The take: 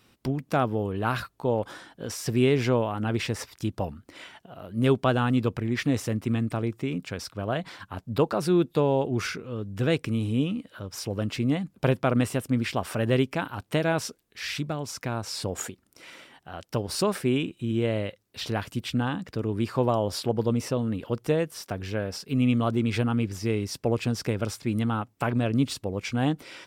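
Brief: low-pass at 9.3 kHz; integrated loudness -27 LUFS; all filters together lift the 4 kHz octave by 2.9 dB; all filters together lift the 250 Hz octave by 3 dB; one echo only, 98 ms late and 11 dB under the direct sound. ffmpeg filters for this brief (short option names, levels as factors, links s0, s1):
-af "lowpass=9300,equalizer=f=250:t=o:g=3.5,equalizer=f=4000:t=o:g=4,aecho=1:1:98:0.282,volume=0.841"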